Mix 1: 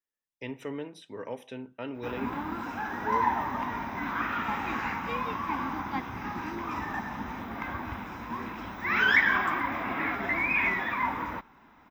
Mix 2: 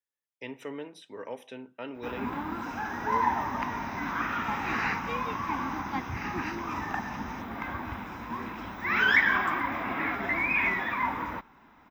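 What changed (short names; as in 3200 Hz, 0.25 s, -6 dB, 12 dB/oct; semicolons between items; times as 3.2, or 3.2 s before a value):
speech: add HPF 280 Hz 6 dB/oct; second sound +8.0 dB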